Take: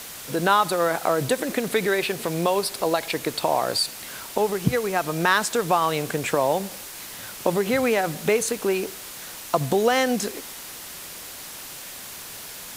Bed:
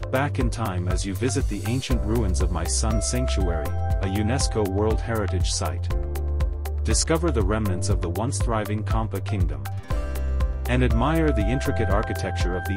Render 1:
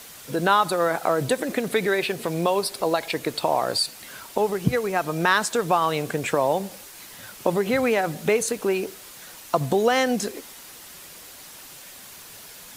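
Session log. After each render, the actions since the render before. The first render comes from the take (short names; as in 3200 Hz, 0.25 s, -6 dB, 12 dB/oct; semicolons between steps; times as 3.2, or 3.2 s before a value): denoiser 6 dB, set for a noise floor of -38 dBFS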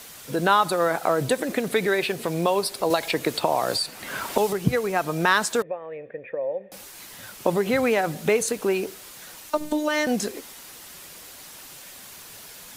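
2.9–4.53 three-band squash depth 70%; 5.62–6.72 vocal tract filter e; 9.5–10.07 robotiser 302 Hz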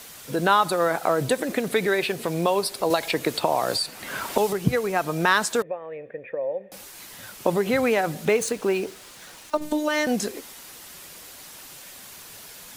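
8.25–9.62 median filter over 3 samples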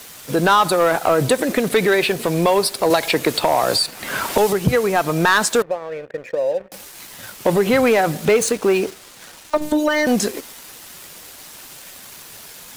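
sample leveller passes 2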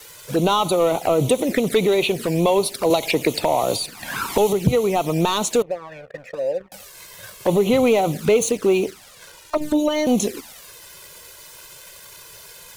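wow and flutter 17 cents; envelope flanger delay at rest 2.4 ms, full sweep at -14.5 dBFS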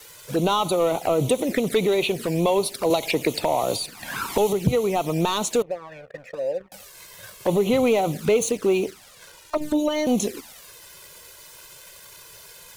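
gain -3 dB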